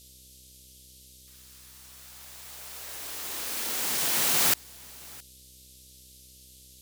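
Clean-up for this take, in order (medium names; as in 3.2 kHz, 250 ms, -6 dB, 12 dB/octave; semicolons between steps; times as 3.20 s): de-hum 64.1 Hz, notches 9; noise print and reduce 22 dB; inverse comb 667 ms -23 dB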